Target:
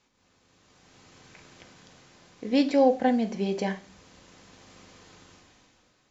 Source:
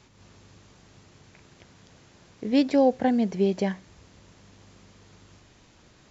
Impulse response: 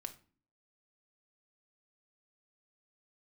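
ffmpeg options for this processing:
-filter_complex "[0:a]lowshelf=frequency=260:gain=-9,dynaudnorm=framelen=200:gausssize=9:maxgain=15dB[link_01];[1:a]atrim=start_sample=2205[link_02];[link_01][link_02]afir=irnorm=-1:irlink=0,volume=-6.5dB"

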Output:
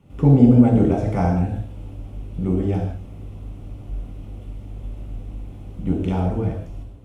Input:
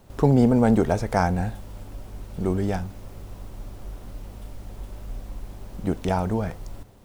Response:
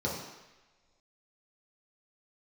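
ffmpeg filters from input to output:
-filter_complex "[1:a]atrim=start_sample=2205,afade=type=out:start_time=0.15:duration=0.01,atrim=end_sample=7056,asetrate=25137,aresample=44100[link_01];[0:a][link_01]afir=irnorm=-1:irlink=0,volume=-12dB"

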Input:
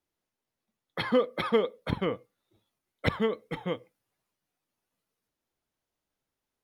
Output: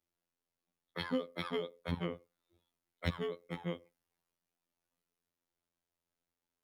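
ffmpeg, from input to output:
ffmpeg -i in.wav -filter_complex "[0:a]afftfilt=real='hypot(re,im)*cos(PI*b)':imag='0':win_size=2048:overlap=0.75,acrossover=split=250|3000[link_01][link_02][link_03];[link_02]acompressor=threshold=-38dB:ratio=2.5[link_04];[link_01][link_04][link_03]amix=inputs=3:normalize=0,volume=-2dB" out.wav

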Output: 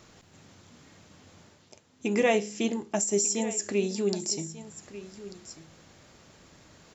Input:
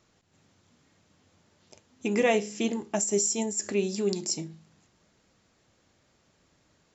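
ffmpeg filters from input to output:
ffmpeg -i in.wav -af "areverse,acompressor=mode=upward:threshold=-43dB:ratio=2.5,areverse,aecho=1:1:1192:0.168" out.wav

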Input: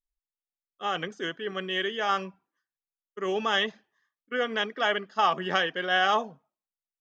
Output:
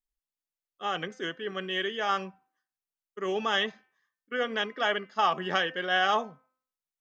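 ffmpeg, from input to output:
ffmpeg -i in.wav -af "bandreject=frequency=257.2:width_type=h:width=4,bandreject=frequency=514.4:width_type=h:width=4,bandreject=frequency=771.6:width_type=h:width=4,bandreject=frequency=1028.8:width_type=h:width=4,bandreject=frequency=1286:width_type=h:width=4,bandreject=frequency=1543.2:width_type=h:width=4,bandreject=frequency=1800.4:width_type=h:width=4,bandreject=frequency=2057.6:width_type=h:width=4,bandreject=frequency=2314.8:width_type=h:width=4,bandreject=frequency=2572:width_type=h:width=4,bandreject=frequency=2829.2:width_type=h:width=4,volume=-1.5dB" out.wav

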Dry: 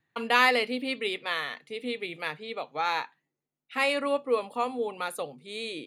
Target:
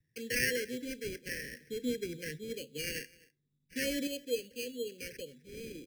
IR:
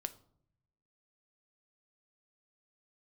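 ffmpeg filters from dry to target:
-filter_complex "[0:a]asettb=1/sr,asplit=3[link_01][link_02][link_03];[link_01]atrim=end=1.524[link_04];[link_02]atrim=start=1.52:end=4.07,asetpts=PTS-STARTPTS,afade=type=in:duration=0.004:curve=qsin,afade=type=out:start_time=2.546:duration=0.004:curve=qsin,lowshelf=frequency=440:gain=12[link_05];[link_03]atrim=start=4.066[link_06];[link_04][link_05]acrossfade=duration=0.004:curve1=hsin:curve2=qsin[link_07];[link_07][link_06]acrossfade=duration=0.004:curve1=qsin:curve2=hsin,acrossover=split=160[link_08][link_09];[link_08]acompressor=mode=upward:threshold=-57dB:ratio=2.5[link_10];[link_10][link_09]amix=inputs=2:normalize=0,acrusher=samples=12:mix=1:aa=0.000001,asuperstop=centerf=930:order=20:qfactor=0.88,aecho=1:1:256:0.0668,volume=-7.5dB"

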